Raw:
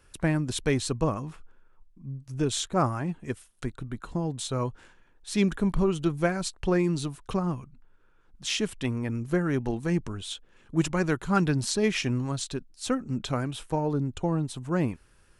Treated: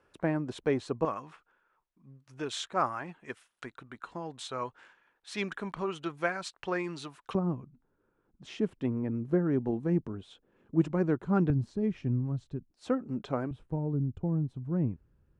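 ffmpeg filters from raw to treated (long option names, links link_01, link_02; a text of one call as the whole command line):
ffmpeg -i in.wav -af "asetnsamples=nb_out_samples=441:pad=0,asendcmd='1.05 bandpass f 1500;7.35 bandpass f 300;11.5 bandpass f 110;12.71 bandpass f 490;13.51 bandpass f 110',bandpass=frequency=590:width_type=q:width=0.66:csg=0" out.wav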